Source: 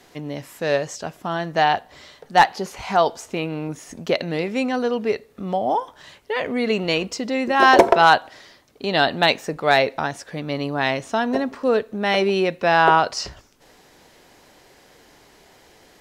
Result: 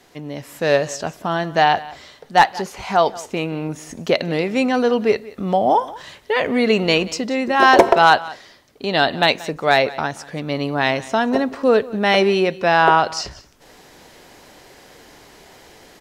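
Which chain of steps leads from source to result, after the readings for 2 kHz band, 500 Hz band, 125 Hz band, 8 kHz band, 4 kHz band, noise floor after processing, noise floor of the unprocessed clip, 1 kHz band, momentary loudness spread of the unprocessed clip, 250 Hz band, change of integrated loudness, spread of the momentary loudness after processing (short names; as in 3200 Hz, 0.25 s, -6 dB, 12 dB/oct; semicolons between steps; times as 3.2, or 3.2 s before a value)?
+2.0 dB, +3.0 dB, +3.0 dB, +3.0 dB, +2.5 dB, -49 dBFS, -53 dBFS, +2.0 dB, 15 LU, +3.5 dB, +2.5 dB, 14 LU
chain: AGC gain up to 7 dB; echo 0.181 s -19.5 dB; gain -1 dB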